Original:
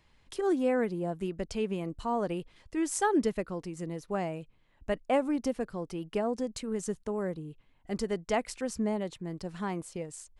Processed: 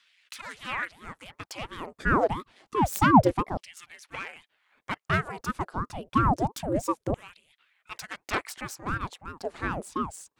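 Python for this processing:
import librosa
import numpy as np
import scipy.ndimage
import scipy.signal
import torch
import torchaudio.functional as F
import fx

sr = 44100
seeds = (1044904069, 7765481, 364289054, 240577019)

y = fx.self_delay(x, sr, depth_ms=0.12)
y = fx.filter_lfo_highpass(y, sr, shape='saw_down', hz=0.28, low_hz=240.0, high_hz=2700.0, q=2.6)
y = fx.ring_lfo(y, sr, carrier_hz=420.0, swing_pct=80, hz=2.9)
y = y * librosa.db_to_amplitude(6.0)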